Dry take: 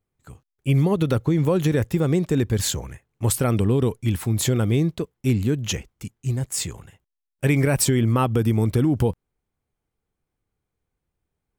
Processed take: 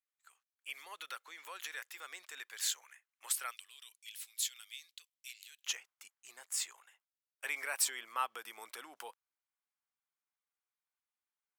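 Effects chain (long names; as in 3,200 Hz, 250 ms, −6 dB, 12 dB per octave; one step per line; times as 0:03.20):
four-pole ladder high-pass 1,100 Hz, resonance 20%, from 0:03.50 2,300 Hz, from 0:05.65 820 Hz
level −4.5 dB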